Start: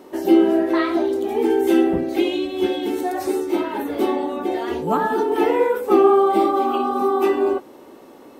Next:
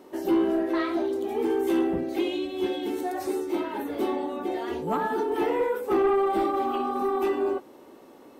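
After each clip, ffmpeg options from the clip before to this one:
ffmpeg -i in.wav -af "asoftclip=type=tanh:threshold=-10.5dB,volume=-6dB" out.wav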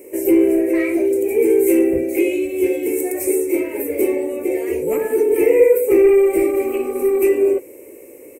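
ffmpeg -i in.wav -af "firequalizer=gain_entry='entry(110,0);entry(190,-14);entry(320,0);entry(500,7);entry(750,-15);entry(1400,-18);entry(2300,10);entry(3400,-23);entry(5200,-7);entry(8100,13)':delay=0.05:min_phase=1,volume=8.5dB" out.wav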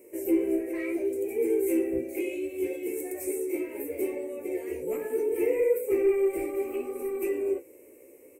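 ffmpeg -i in.wav -af "flanger=delay=8.5:depth=8:regen=41:speed=0.7:shape=sinusoidal,volume=-8.5dB" out.wav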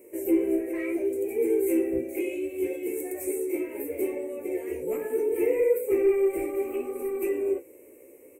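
ffmpeg -i in.wav -af "equalizer=frequency=4600:width_type=o:width=0.68:gain=-8,volume=1.5dB" out.wav

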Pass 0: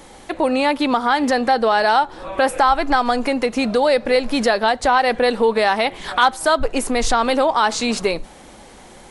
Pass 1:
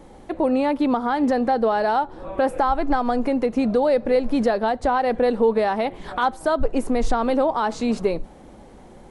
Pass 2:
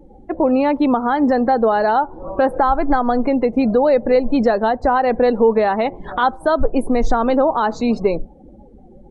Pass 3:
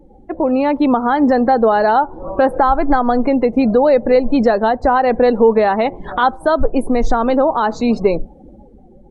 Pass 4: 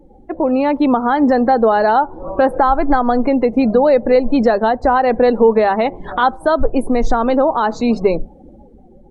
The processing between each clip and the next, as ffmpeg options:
ffmpeg -i in.wav -af "tiltshelf=frequency=1100:gain=8,volume=-7dB" out.wav
ffmpeg -i in.wav -af "afftdn=noise_reduction=27:noise_floor=-38,volume=4.5dB" out.wav
ffmpeg -i in.wav -af "dynaudnorm=framelen=150:gausssize=9:maxgain=11.5dB,volume=-1dB" out.wav
ffmpeg -i in.wav -af "bandreject=frequency=50:width_type=h:width=6,bandreject=frequency=100:width_type=h:width=6,bandreject=frequency=150:width_type=h:width=6,bandreject=frequency=200:width_type=h:width=6" out.wav

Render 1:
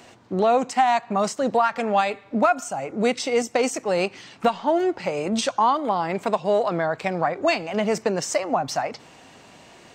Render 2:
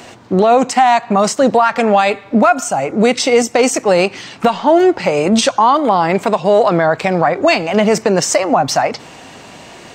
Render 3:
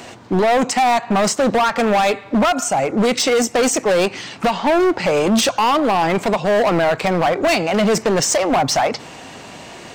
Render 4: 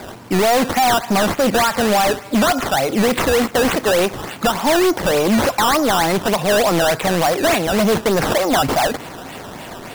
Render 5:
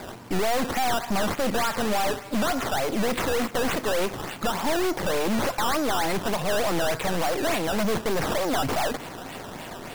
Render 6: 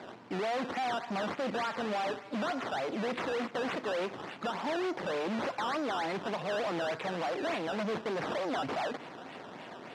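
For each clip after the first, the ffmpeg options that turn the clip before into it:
ffmpeg -i in.wav -af "alimiter=level_in=13.5dB:limit=-1dB:release=50:level=0:latency=1,volume=-1.5dB" out.wav
ffmpeg -i in.wav -af "asoftclip=type=hard:threshold=-12.5dB" out.wav
ffmpeg -i in.wav -filter_complex "[0:a]asplit=2[link_01][link_02];[link_02]alimiter=limit=-20dB:level=0:latency=1:release=11,volume=2dB[link_03];[link_01][link_03]amix=inputs=2:normalize=0,acrusher=samples=14:mix=1:aa=0.000001:lfo=1:lforange=14:lforate=3.4,volume=-3.5dB" out.wav
ffmpeg -i in.wav -af "aeval=exprs='(tanh(11.2*val(0)+0.6)-tanh(0.6))/11.2':channel_layout=same,volume=-2dB" out.wav
ffmpeg -i in.wav -af "highpass=180,lowpass=3800,volume=-7.5dB" out.wav

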